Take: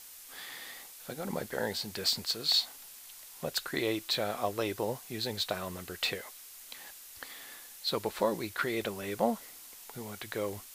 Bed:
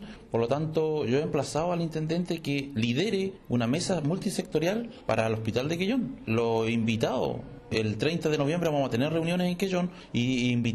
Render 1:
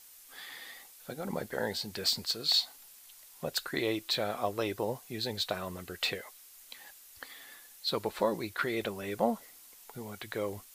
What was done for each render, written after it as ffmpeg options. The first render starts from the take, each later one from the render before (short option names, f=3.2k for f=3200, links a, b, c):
-af "afftdn=nr=6:nf=-50"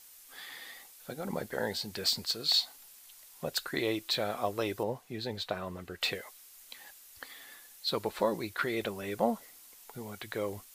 -filter_complex "[0:a]asettb=1/sr,asplit=3[a][b][c];[a]atrim=end=4.834[d];[b]atrim=start=4.83:end=6.02,asetpts=PTS-STARTPTS,afade=t=in:d=0.004:c=qsin,afade=t=out:st=1.186:d=0.004:c=qsin,highshelf=f=4.2k:g=-11[e];[c]atrim=start=6.016[f];[d][e]acrossfade=d=0.004:c1=hsin:c2=qsin[g];[g][f]acrossfade=d=0.004:c1=qsin:c2=hsin"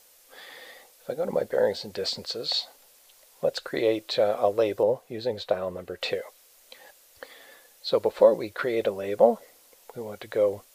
-filter_complex "[0:a]acrossover=split=7000[a][b];[b]acompressor=threshold=-55dB:ratio=4:attack=1:release=60[c];[a][c]amix=inputs=2:normalize=0,equalizer=f=530:t=o:w=0.8:g=14.5"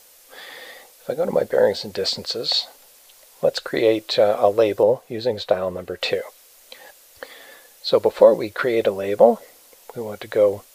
-af "volume=6.5dB,alimiter=limit=-1dB:level=0:latency=1"